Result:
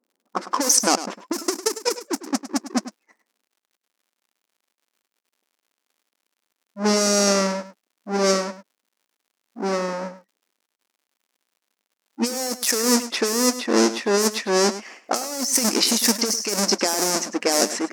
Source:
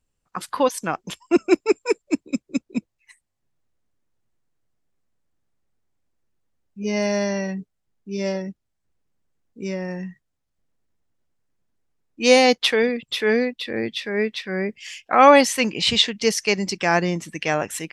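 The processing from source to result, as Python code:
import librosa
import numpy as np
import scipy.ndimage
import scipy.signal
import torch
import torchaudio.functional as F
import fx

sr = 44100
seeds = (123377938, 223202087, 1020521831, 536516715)

p1 = fx.halfwave_hold(x, sr)
p2 = fx.env_lowpass(p1, sr, base_hz=720.0, full_db=-12.5)
p3 = fx.high_shelf_res(p2, sr, hz=4300.0, db=9.0, q=3.0)
p4 = fx.over_compress(p3, sr, threshold_db=-19.0, ratio=-1.0)
p5 = fx.dmg_crackle(p4, sr, seeds[0], per_s=110.0, level_db=-52.0)
p6 = fx.brickwall_highpass(p5, sr, low_hz=200.0)
p7 = p6 + fx.echo_single(p6, sr, ms=103, db=-13.5, dry=0)
y = p7 * 10.0 ** (-1.0 / 20.0)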